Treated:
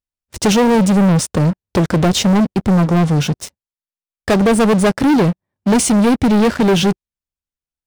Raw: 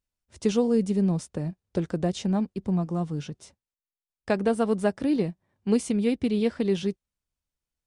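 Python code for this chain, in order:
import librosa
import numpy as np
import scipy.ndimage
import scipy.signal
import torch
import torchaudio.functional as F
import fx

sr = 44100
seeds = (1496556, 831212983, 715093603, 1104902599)

y = fx.leveller(x, sr, passes=5)
y = y * 10.0 ** (3.0 / 20.0)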